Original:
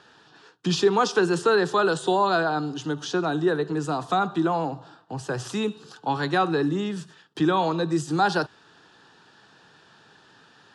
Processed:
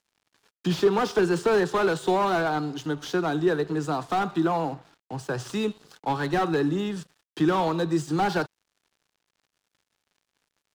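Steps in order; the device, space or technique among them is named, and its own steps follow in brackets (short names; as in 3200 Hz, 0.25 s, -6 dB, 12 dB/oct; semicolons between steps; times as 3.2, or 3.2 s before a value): early transistor amplifier (crossover distortion -48 dBFS; slew limiter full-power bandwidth 82 Hz)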